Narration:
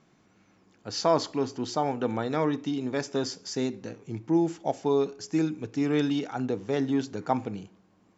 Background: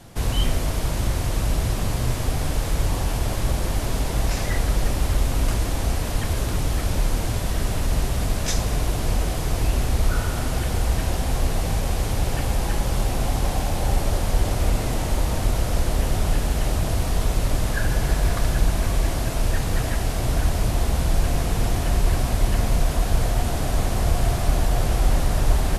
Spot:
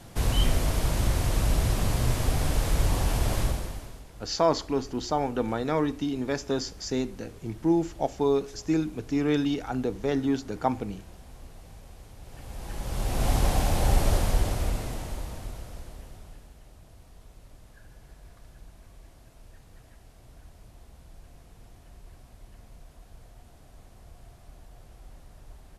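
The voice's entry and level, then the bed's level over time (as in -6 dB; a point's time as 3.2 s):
3.35 s, +0.5 dB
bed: 3.41 s -2 dB
4.07 s -24.5 dB
12.19 s -24.5 dB
13.3 s -1 dB
14.14 s -1 dB
16.62 s -29.5 dB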